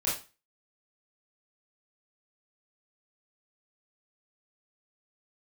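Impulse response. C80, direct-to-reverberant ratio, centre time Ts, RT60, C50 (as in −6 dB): 11.5 dB, −8.0 dB, 38 ms, 0.30 s, 4.5 dB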